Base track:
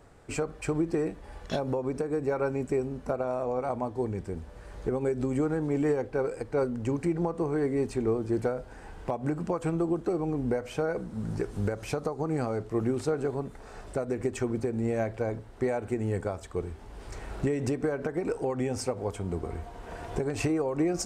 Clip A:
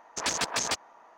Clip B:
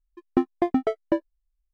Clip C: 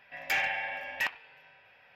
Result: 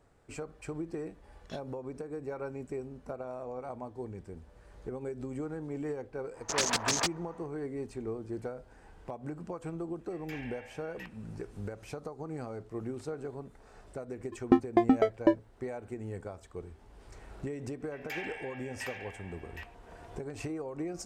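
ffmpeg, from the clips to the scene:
-filter_complex "[3:a]asplit=2[a][b];[0:a]volume=-10dB[c];[b]aecho=1:1:765:0.531[d];[1:a]atrim=end=1.17,asetpts=PTS-STARTPTS,volume=-0.5dB,afade=t=in:d=0.05,afade=t=out:st=1.12:d=0.05,adelay=6320[e];[a]atrim=end=1.95,asetpts=PTS-STARTPTS,volume=-17.5dB,afade=t=in:d=0.004:c=hsin,afade=t=out:st=1.946:d=0.004:c=hsin,adelay=9990[f];[2:a]atrim=end=1.73,asetpts=PTS-STARTPTS,volume=-0.5dB,afade=t=in:d=0.004:c=hsin,afade=t=out:st=1.726:d=0.004:c=hsin,adelay=14150[g];[d]atrim=end=1.95,asetpts=PTS-STARTPTS,volume=-11dB,afade=t=in:d=0.004:c=hsin,afade=t=out:st=1.946:d=0.004:c=hsin,adelay=784980S[h];[c][e][f][g][h]amix=inputs=5:normalize=0"

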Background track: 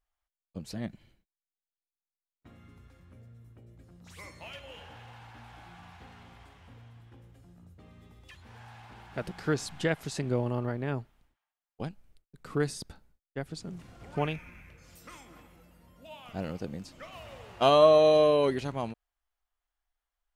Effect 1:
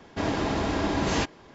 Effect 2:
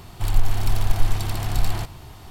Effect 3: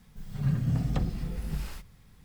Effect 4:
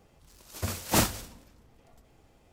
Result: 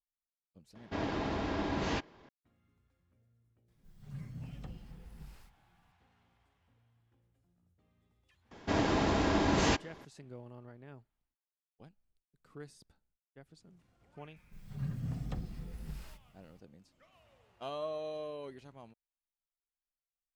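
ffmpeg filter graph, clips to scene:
-filter_complex "[1:a]asplit=2[a][b];[3:a]asplit=2[c][d];[0:a]volume=-19.5dB[e];[a]lowpass=4.9k,atrim=end=1.54,asetpts=PTS-STARTPTS,volume=-8dB,afade=t=in:d=0.004:c=hsin,afade=t=out:st=1.536:d=0.004:c=hsin,adelay=750[f];[c]atrim=end=2.24,asetpts=PTS-STARTPTS,volume=-17.5dB,afade=t=in:d=0.004:c=hsin,afade=t=out:st=2.236:d=0.004:c=hsin,adelay=3680[g];[b]atrim=end=1.54,asetpts=PTS-STARTPTS,volume=-2.5dB,afade=t=in:d=0.004:c=hsin,afade=t=out:st=1.536:d=0.004:c=hsin,adelay=8510[h];[d]atrim=end=2.24,asetpts=PTS-STARTPTS,volume=-10.5dB,afade=t=in:d=0.004:c=hsin,afade=t=out:st=2.236:d=0.004:c=hsin,adelay=14360[i];[e][f][g][h][i]amix=inputs=5:normalize=0"

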